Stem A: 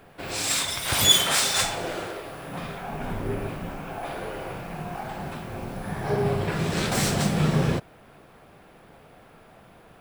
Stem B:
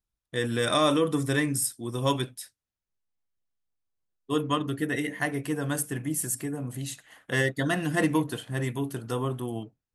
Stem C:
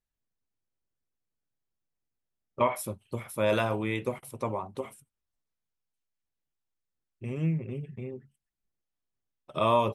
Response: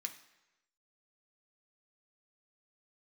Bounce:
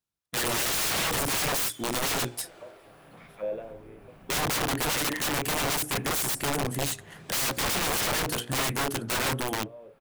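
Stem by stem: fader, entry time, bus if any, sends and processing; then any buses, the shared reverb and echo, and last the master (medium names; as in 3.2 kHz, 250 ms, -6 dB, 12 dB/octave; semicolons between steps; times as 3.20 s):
-13.0 dB, 0.60 s, no send, compression 3:1, threshold -36 dBFS, peak gain reduction 17.5 dB
+3.0 dB, 0.00 s, no send, high-pass 110 Hz 12 dB/octave; waveshaping leveller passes 1
-0.5 dB, 0.00 s, no send, peaking EQ 1 kHz -11.5 dB 0.93 oct; auto-wah 520–4600 Hz, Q 2.4, down, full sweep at -26.5 dBFS; auto duck -17 dB, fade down 0.85 s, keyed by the second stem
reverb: none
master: hum notches 60/120/180/240/300/360/420/480/540 Hz; integer overflow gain 22.5 dB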